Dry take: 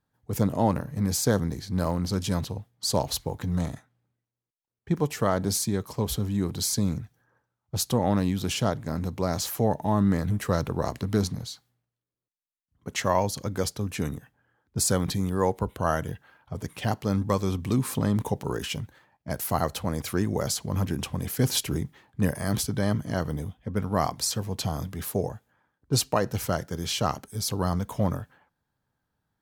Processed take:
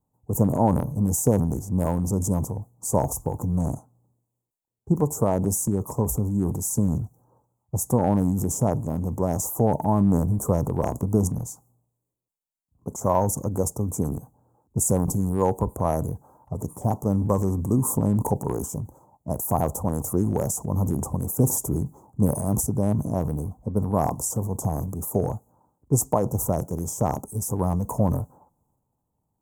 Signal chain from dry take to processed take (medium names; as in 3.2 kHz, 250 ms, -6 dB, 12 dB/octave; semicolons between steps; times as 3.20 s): elliptic band-stop 970–7100 Hz, stop band 40 dB; transient shaper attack +3 dB, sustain +8 dB; trim +2 dB